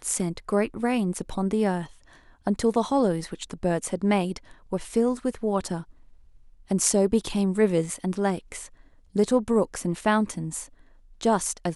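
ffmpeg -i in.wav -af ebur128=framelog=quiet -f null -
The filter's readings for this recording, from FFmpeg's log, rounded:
Integrated loudness:
  I:         -25.8 LUFS
  Threshold: -36.5 LUFS
Loudness range:
  LRA:         2.2 LU
  Threshold: -46.4 LUFS
  LRA low:   -27.5 LUFS
  LRA high:  -25.2 LUFS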